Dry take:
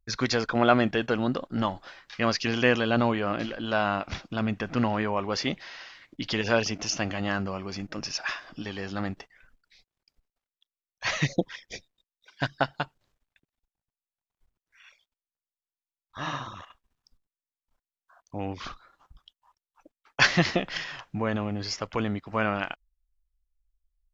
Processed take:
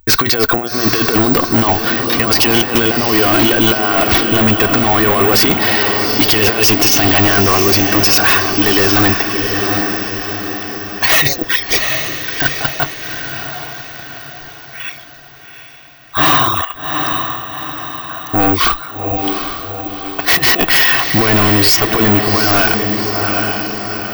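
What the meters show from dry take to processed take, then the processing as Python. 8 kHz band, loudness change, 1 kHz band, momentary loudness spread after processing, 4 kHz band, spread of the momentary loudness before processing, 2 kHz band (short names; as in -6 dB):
n/a, +16.5 dB, +15.5 dB, 14 LU, +18.5 dB, 17 LU, +15.5 dB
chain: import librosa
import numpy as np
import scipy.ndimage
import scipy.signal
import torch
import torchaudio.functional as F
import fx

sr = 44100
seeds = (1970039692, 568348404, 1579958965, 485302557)

p1 = fx.low_shelf(x, sr, hz=100.0, db=-7.0)
p2 = p1 + 0.58 * np.pad(p1, (int(2.7 * sr / 1000.0), 0))[:len(p1)]
p3 = fx.over_compress(p2, sr, threshold_db=-30.0, ratio=-0.5)
p4 = p3 + fx.echo_diffused(p3, sr, ms=773, feedback_pct=50, wet_db=-9, dry=0)
p5 = (np.kron(scipy.signal.resample_poly(p4, 1, 2), np.eye(2)[0]) * 2)[:len(p4)]
p6 = fx.fold_sine(p5, sr, drive_db=18, ceiling_db=-4.5)
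p7 = p5 + (p6 * librosa.db_to_amplitude(-5.0))
y = p7 * librosa.db_to_amplitude(3.5)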